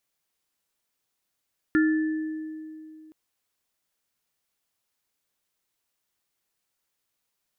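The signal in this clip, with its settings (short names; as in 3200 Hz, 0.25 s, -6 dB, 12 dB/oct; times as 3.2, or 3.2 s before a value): sine partials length 1.37 s, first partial 313 Hz, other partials 1400/1750 Hz, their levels -10/-8.5 dB, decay 2.74 s, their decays 0.37/1.45 s, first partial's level -17 dB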